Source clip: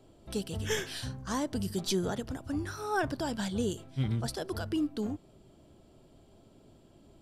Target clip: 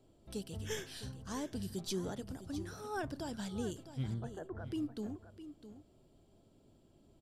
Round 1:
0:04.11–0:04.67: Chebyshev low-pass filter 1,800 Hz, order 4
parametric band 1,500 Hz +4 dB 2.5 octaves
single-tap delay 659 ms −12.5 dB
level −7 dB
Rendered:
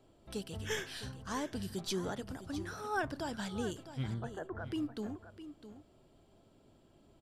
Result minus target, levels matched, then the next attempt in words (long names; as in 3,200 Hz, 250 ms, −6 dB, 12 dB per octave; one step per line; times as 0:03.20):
2,000 Hz band +5.0 dB
0:04.11–0:04.67: Chebyshev low-pass filter 1,800 Hz, order 4
parametric band 1,500 Hz −3.5 dB 2.5 octaves
single-tap delay 659 ms −12.5 dB
level −7 dB